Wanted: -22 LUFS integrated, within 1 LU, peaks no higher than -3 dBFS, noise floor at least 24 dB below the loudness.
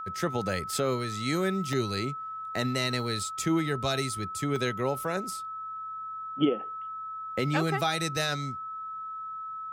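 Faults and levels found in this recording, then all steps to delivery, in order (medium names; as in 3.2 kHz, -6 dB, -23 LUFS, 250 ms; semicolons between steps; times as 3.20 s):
dropouts 2; longest dropout 1.4 ms; steady tone 1.3 kHz; tone level -35 dBFS; loudness -30.5 LUFS; peak level -12.5 dBFS; loudness target -22.0 LUFS
-> interpolate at 1.73/4.56 s, 1.4 ms; band-stop 1.3 kHz, Q 30; trim +8.5 dB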